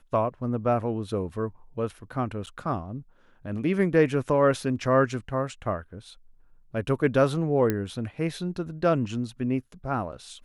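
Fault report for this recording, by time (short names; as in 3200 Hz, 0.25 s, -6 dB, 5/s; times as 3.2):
2.46–2.47 gap 8.6 ms
7.7 pop -12 dBFS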